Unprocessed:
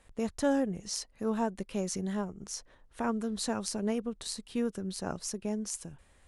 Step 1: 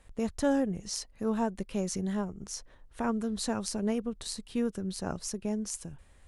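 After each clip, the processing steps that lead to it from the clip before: bass shelf 130 Hz +6.5 dB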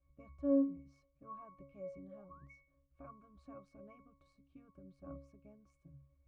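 dynamic bell 1.2 kHz, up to +5 dB, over -47 dBFS, Q 0.72; painted sound rise, 2.10–2.51 s, 520–2300 Hz -40 dBFS; pitch-class resonator C#, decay 0.42 s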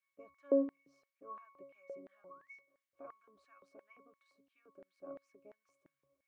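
LFO high-pass square 2.9 Hz 420–1800 Hz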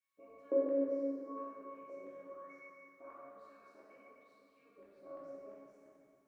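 plate-style reverb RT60 2.7 s, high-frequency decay 0.75×, DRR -8.5 dB; trim -6.5 dB

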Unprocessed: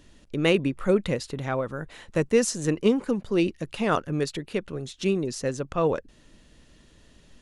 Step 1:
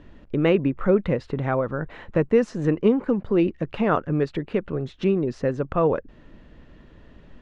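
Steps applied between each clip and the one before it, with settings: low-pass 1.8 kHz 12 dB/octave; in parallel at +2.5 dB: compression, threshold -30 dBFS, peak gain reduction 14 dB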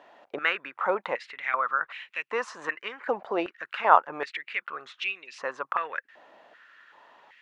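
step-sequenced high-pass 2.6 Hz 740–2500 Hz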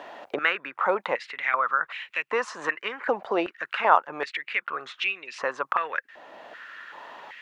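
three bands compressed up and down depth 40%; trim +3 dB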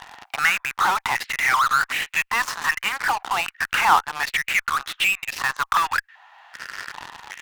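elliptic high-pass 790 Hz, stop band 40 dB; in parallel at -8 dB: fuzz box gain 41 dB, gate -39 dBFS

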